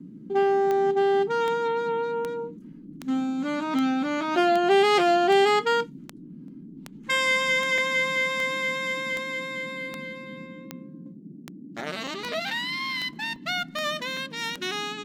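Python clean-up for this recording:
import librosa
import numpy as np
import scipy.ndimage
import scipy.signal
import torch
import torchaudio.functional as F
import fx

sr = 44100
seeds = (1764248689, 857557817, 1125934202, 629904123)

y = fx.fix_declick_ar(x, sr, threshold=10.0)
y = fx.fix_interpolate(y, sr, at_s=(6.48, 7.78, 12.07, 13.36, 14.17), length_ms=2.4)
y = fx.noise_reduce(y, sr, print_start_s=11.14, print_end_s=11.64, reduce_db=27.0)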